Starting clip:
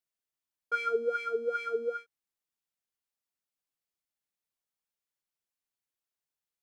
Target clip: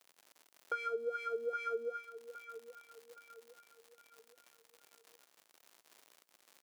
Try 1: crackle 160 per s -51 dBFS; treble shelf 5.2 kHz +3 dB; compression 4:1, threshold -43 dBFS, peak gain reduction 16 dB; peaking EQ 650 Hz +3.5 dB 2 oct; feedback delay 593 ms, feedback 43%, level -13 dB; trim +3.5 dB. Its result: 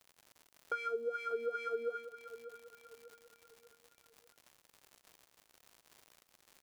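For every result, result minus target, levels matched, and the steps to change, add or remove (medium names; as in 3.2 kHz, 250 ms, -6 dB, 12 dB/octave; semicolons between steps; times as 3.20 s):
echo 223 ms early; 250 Hz band +3.0 dB
change: feedback delay 816 ms, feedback 43%, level -13 dB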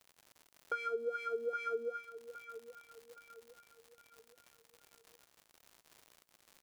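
250 Hz band +3.5 dB
add after compression: high-pass 260 Hz 12 dB/octave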